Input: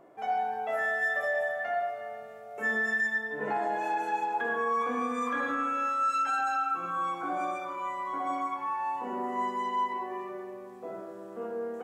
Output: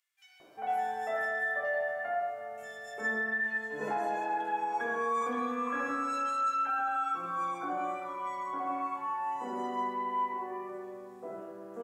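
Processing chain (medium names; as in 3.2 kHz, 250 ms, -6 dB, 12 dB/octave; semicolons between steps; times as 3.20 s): bands offset in time highs, lows 400 ms, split 2.7 kHz; trim -2 dB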